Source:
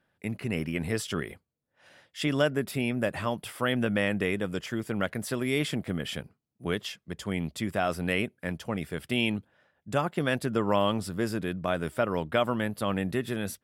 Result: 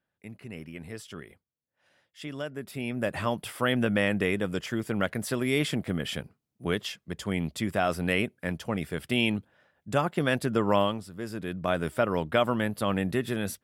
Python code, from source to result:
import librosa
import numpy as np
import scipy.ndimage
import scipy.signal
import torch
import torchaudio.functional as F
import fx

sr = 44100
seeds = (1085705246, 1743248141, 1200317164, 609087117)

y = fx.gain(x, sr, db=fx.line((2.48, -10.5), (3.19, 1.5), (10.81, 1.5), (11.07, -10.0), (11.69, 1.5)))